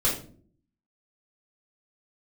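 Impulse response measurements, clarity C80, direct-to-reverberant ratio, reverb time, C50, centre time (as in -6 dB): 11.0 dB, -7.5 dB, no single decay rate, 6.0 dB, 31 ms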